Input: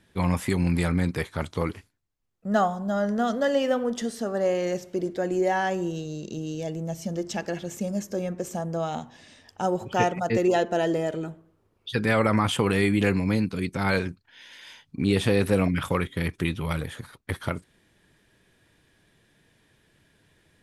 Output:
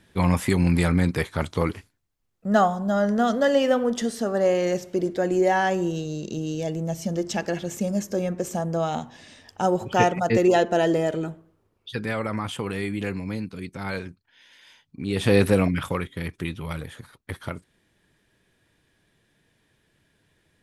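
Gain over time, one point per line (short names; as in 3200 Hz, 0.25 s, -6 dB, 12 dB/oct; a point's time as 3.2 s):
11.27 s +3.5 dB
12.21 s -6.5 dB
15.06 s -6.5 dB
15.35 s +5 dB
16.1 s -3.5 dB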